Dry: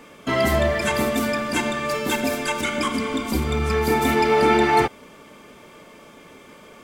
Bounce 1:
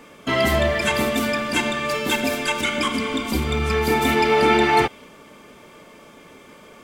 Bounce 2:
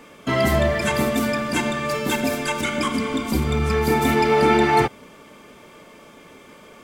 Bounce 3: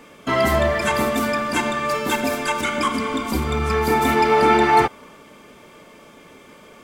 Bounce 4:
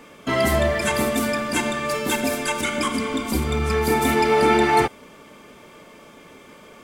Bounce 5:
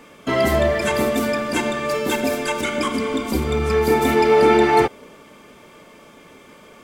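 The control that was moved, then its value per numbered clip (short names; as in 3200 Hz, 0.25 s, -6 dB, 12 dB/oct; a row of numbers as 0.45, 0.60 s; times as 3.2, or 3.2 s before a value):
dynamic EQ, frequency: 3000, 140, 1100, 9700, 450 Hz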